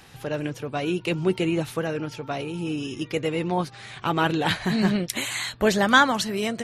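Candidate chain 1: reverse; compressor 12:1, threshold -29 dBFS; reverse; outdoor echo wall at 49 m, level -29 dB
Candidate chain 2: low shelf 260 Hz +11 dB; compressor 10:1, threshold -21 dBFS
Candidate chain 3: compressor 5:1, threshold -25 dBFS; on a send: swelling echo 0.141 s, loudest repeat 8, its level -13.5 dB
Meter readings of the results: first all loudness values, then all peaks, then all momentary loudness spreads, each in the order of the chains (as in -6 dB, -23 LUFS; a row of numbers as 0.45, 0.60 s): -33.5, -26.5, -28.5 LUFS; -13.0, -9.0, -8.0 dBFS; 3, 3, 4 LU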